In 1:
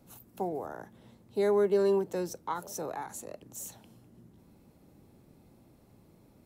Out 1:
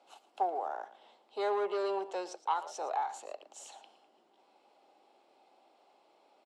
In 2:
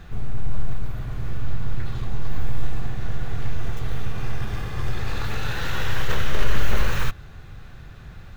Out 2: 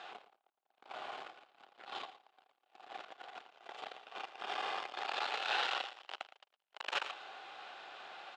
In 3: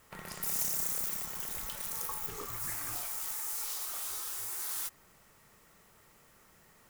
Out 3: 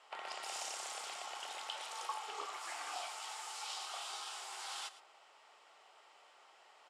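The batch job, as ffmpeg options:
-filter_complex "[0:a]asoftclip=type=tanh:threshold=-22dB,aeval=exprs='0.0794*(cos(1*acos(clip(val(0)/0.0794,-1,1)))-cos(1*PI/2))+0.000562*(cos(2*acos(clip(val(0)/0.0794,-1,1)))-cos(2*PI/2))+0.00126*(cos(4*acos(clip(val(0)/0.0794,-1,1)))-cos(4*PI/2))+0.000501*(cos(8*acos(clip(val(0)/0.0794,-1,1)))-cos(8*PI/2))':c=same,highpass=f=460:w=0.5412,highpass=f=460:w=1.3066,equalizer=f=480:t=q:w=4:g=-5,equalizer=f=780:t=q:w=4:g=8,equalizer=f=1.8k:t=q:w=4:g=-5,equalizer=f=3k:t=q:w=4:g=6,equalizer=f=6.2k:t=q:w=4:g=-8,lowpass=f=6.7k:w=0.5412,lowpass=f=6.7k:w=1.3066,asplit=2[a][b];[b]aecho=0:1:113:0.168[c];[a][c]amix=inputs=2:normalize=0,volume=1.5dB"

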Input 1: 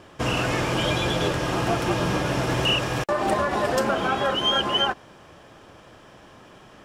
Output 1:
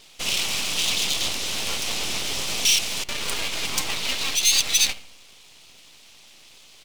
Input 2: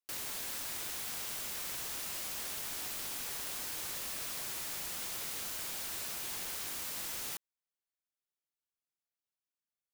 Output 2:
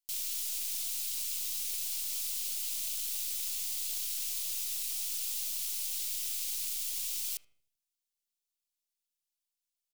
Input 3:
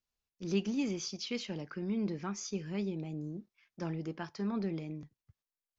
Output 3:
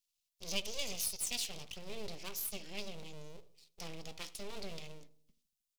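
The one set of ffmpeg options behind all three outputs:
-filter_complex "[0:a]highshelf=f=4.7k:g=-6.5,bandreject=f=118.2:t=h:w=4,bandreject=f=236.4:t=h:w=4,bandreject=f=354.6:t=h:w=4,bandreject=f=472.8:t=h:w=4,bandreject=f=591:t=h:w=4,bandreject=f=709.2:t=h:w=4,bandreject=f=827.4:t=h:w=4,bandreject=f=945.6:t=h:w=4,bandreject=f=1.0638k:t=h:w=4,bandreject=f=1.182k:t=h:w=4,bandreject=f=1.3002k:t=h:w=4,bandreject=f=1.4184k:t=h:w=4,bandreject=f=1.5366k:t=h:w=4,bandreject=f=1.6548k:t=h:w=4,aeval=exprs='abs(val(0))':c=same,aexciter=amount=7:drive=6.2:freq=2.4k,asplit=2[a][b];[b]adelay=77,lowpass=f=910:p=1,volume=-15dB,asplit=2[c][d];[d]adelay=77,lowpass=f=910:p=1,volume=0.54,asplit=2[e][f];[f]adelay=77,lowpass=f=910:p=1,volume=0.54,asplit=2[g][h];[h]adelay=77,lowpass=f=910:p=1,volume=0.54,asplit=2[i][j];[j]adelay=77,lowpass=f=910:p=1,volume=0.54[k];[c][e][g][i][k]amix=inputs=5:normalize=0[l];[a][l]amix=inputs=2:normalize=0,volume=-7.5dB"

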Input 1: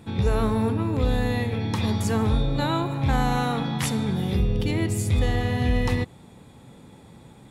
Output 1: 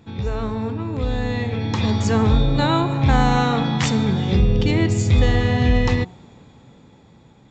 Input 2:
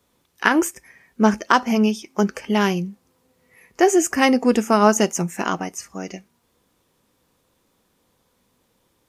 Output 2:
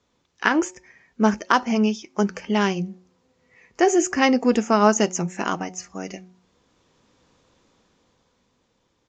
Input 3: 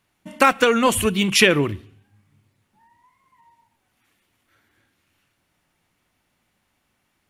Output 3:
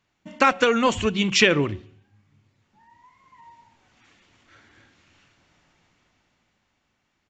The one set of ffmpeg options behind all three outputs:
-af "bandreject=f=183.2:t=h:w=4,bandreject=f=366.4:t=h:w=4,bandreject=f=549.6:t=h:w=4,bandreject=f=732.8:t=h:w=4,bandreject=f=916:t=h:w=4,dynaudnorm=f=150:g=21:m=12dB,aresample=16000,aresample=44100,volume=-2.5dB"

